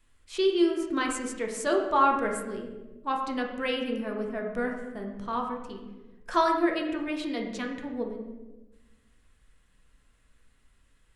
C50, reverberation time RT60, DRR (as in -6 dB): 5.0 dB, 1.2 s, 1.0 dB